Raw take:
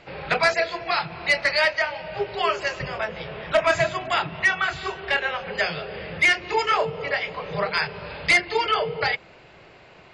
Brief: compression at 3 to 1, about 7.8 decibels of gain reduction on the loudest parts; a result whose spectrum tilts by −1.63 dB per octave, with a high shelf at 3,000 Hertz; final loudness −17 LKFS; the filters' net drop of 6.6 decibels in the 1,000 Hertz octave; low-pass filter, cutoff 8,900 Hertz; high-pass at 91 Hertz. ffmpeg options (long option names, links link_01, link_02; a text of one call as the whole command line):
ffmpeg -i in.wav -af "highpass=91,lowpass=8900,equalizer=frequency=1000:width_type=o:gain=-9,highshelf=frequency=3000:gain=-3,acompressor=threshold=-28dB:ratio=3,volume=14.5dB" out.wav